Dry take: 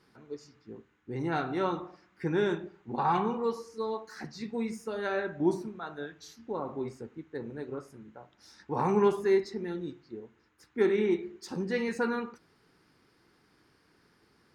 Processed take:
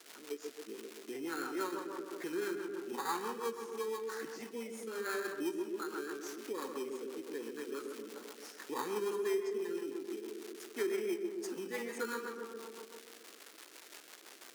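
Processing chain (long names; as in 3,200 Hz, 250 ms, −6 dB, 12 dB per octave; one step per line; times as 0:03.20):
phaser with its sweep stopped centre 1,600 Hz, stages 4
in parallel at −4.5 dB: sample-rate reduction 2,800 Hz, jitter 0%
on the sum: high-shelf EQ 5,300 Hz +7 dB
on a send: tape delay 131 ms, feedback 72%, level −5.5 dB, low-pass 1,500 Hz
on the sum: surface crackle 490 per second −42 dBFS
rotating-speaker cabinet horn 6 Hz
downward compressor 2.5 to 1, threshold −43 dBFS, peak gain reduction 14.5 dB
high-pass filter 330 Hz 24 dB per octave
level +6.5 dB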